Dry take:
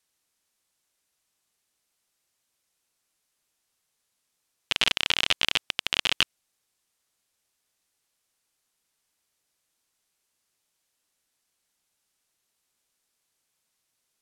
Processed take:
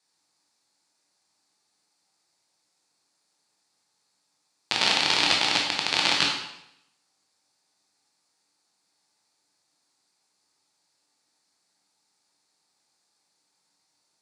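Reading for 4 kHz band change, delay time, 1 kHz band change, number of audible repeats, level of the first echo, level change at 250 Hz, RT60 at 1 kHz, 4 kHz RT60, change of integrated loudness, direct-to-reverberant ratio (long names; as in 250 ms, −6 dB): +2.0 dB, no echo audible, +8.0 dB, no echo audible, no echo audible, +8.0 dB, 0.80 s, 0.70 s, +2.5 dB, −2.0 dB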